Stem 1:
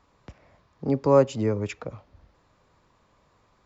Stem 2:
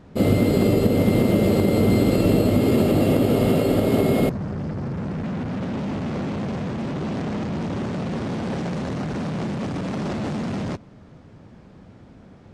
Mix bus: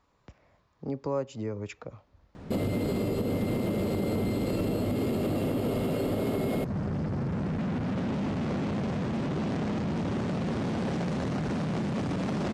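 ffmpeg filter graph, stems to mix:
-filter_complex "[0:a]volume=0.501[s0];[1:a]acompressor=threshold=0.0891:ratio=3,asoftclip=type=tanh:threshold=0.126,adelay=2350,volume=1.33[s1];[s0][s1]amix=inputs=2:normalize=0,acompressor=threshold=0.0282:ratio=2"

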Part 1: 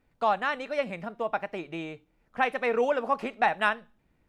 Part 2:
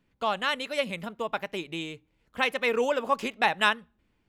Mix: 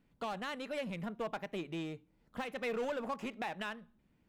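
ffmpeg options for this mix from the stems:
-filter_complex "[0:a]equalizer=f=190:t=o:w=1.4:g=9.5,volume=31.6,asoftclip=hard,volume=0.0316,volume=0.355,asplit=2[s0][s1];[1:a]volume=0.562[s2];[s1]apad=whole_len=188799[s3];[s2][s3]sidechaincompress=threshold=0.00355:ratio=4:attack=16:release=831[s4];[s0][s4]amix=inputs=2:normalize=0,alimiter=level_in=1.68:limit=0.0631:level=0:latency=1:release=247,volume=0.596"

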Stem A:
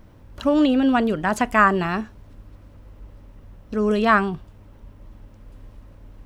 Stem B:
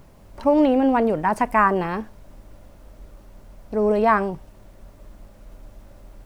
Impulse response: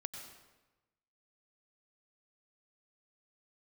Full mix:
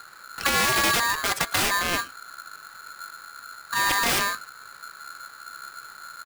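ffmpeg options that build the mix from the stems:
-filter_complex "[0:a]aeval=exprs='(mod(4.73*val(0)+1,2)-1)/4.73':c=same,volume=1.12[s0];[1:a]acompressor=threshold=0.0708:ratio=2.5,acrusher=samples=36:mix=1:aa=0.000001:lfo=1:lforange=21.6:lforate=3.4,adelay=2.8,volume=0.447,asplit=2[s1][s2];[s2]apad=whole_len=275653[s3];[s0][s3]sidechaincompress=threshold=0.0251:ratio=8:attack=16:release=239[s4];[s4][s1]amix=inputs=2:normalize=0,aeval=exprs='val(0)*sgn(sin(2*PI*1400*n/s))':c=same"

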